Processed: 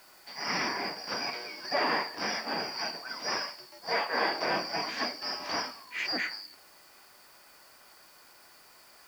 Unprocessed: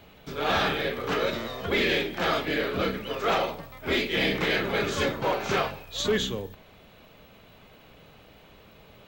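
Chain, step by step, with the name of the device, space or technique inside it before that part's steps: split-band scrambled radio (four-band scrambler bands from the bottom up 2341; BPF 300–2800 Hz; white noise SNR 25 dB)

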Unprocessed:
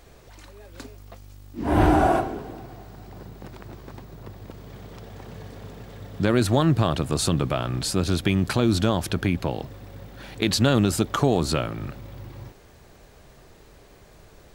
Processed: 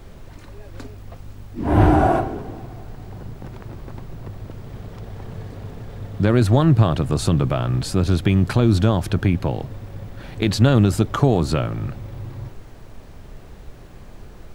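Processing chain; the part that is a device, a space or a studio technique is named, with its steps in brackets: car interior (bell 110 Hz +6 dB 0.99 oct; high shelf 2700 Hz -7 dB; brown noise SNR 17 dB); gain +2.5 dB

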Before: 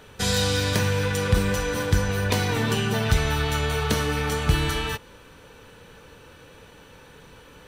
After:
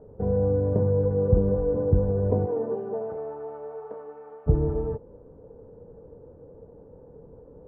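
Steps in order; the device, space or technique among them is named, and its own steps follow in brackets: 2.45–4.46 HPF 350 Hz -> 1400 Hz 12 dB/oct; under water (LPF 680 Hz 24 dB/oct; bell 460 Hz +6 dB 0.39 oct)

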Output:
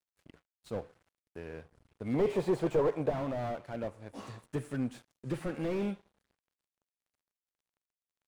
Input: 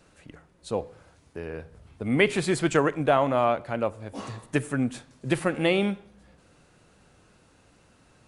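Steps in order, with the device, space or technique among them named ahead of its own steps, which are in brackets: early transistor amplifier (crossover distortion -50.5 dBFS; slew limiter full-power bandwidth 31 Hz); 2.14–3.1 band shelf 640 Hz +8.5 dB; gain -7 dB

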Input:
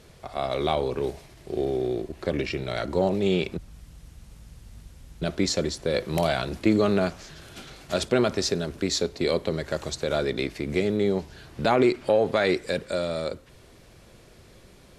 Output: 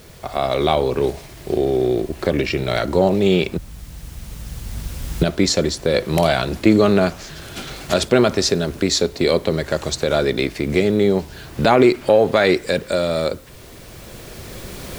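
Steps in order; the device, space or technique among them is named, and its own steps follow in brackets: cheap recorder with automatic gain (white noise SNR 33 dB; recorder AGC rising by 6.9 dB/s); gain +7.5 dB

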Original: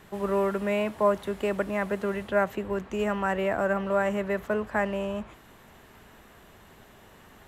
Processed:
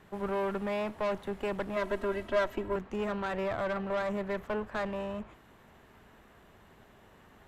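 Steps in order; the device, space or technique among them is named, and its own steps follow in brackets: tube preamp driven hard (tube stage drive 27 dB, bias 0.75; high shelf 3900 Hz -8 dB); 1.76–2.76 comb 3.1 ms, depth 97%

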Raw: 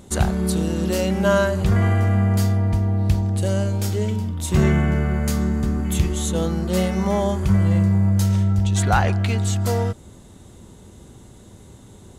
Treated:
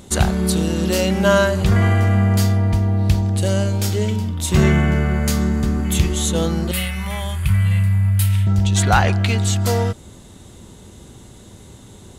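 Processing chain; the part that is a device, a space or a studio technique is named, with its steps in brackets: 6.71–8.47 EQ curve 160 Hz 0 dB, 240 Hz -25 dB, 2600 Hz +4 dB, 6200 Hz -11 dB, 9600 Hz +6 dB; presence and air boost (bell 3500 Hz +4.5 dB 2 oct; high shelf 12000 Hz +4 dB); gain +2.5 dB

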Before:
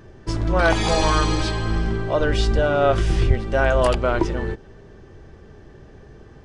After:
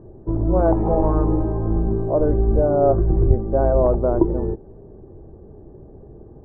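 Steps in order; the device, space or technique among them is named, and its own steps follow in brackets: under water (LPF 820 Hz 24 dB/oct; bell 340 Hz +4 dB 0.56 oct); gain +1.5 dB

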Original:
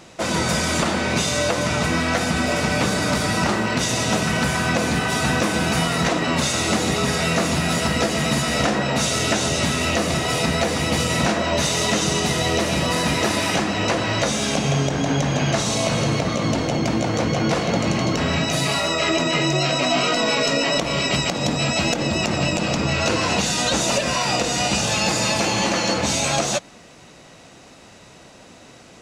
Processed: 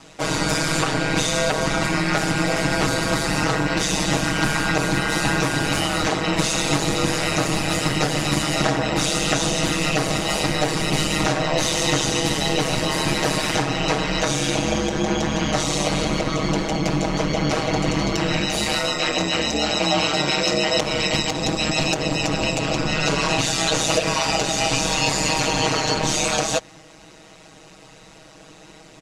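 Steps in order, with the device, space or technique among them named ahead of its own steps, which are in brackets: ring-modulated robot voice (ring modulator 75 Hz; comb 6.3 ms, depth 94%)

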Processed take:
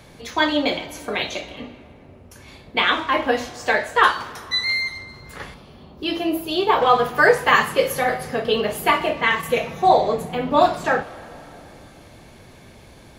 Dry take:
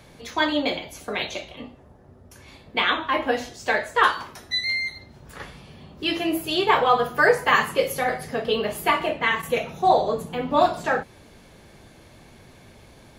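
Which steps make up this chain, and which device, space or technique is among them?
saturated reverb return (on a send at -12.5 dB: reverb RT60 2.8 s, pre-delay 34 ms + soft clip -25 dBFS, distortion -7 dB); 5.54–6.82 on the sum: graphic EQ 125/2000/8000 Hz -7/-8/-9 dB; gain +3 dB

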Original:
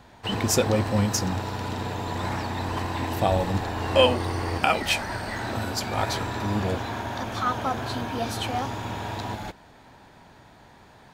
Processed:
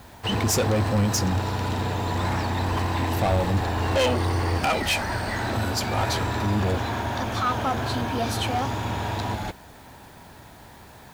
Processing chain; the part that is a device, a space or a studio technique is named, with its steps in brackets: open-reel tape (soft clip -22 dBFS, distortion -9 dB; bell 70 Hz +5 dB 1.01 oct; white noise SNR 32 dB); gain +4 dB

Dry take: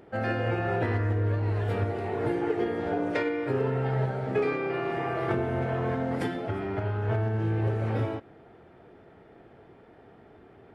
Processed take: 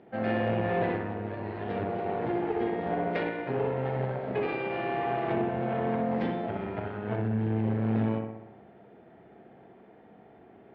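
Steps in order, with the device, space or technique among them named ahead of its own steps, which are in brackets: analogue delay pedal into a guitar amplifier (analogue delay 63 ms, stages 1024, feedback 61%, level -4 dB; tube stage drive 21 dB, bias 0.7; speaker cabinet 80–3900 Hz, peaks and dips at 99 Hz -6 dB, 210 Hz +7 dB, 730 Hz +4 dB, 1300 Hz -4 dB)

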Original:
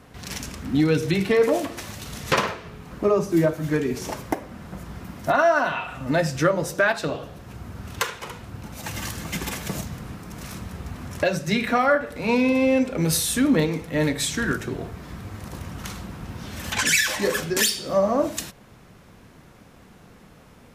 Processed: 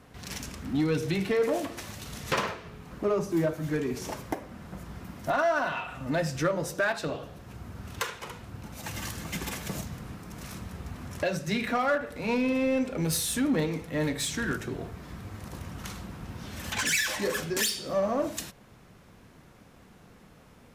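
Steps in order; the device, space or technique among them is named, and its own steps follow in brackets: parallel distortion (in parallel at -4 dB: hard clip -23.5 dBFS, distortion -6 dB); on the sum: gain -9 dB

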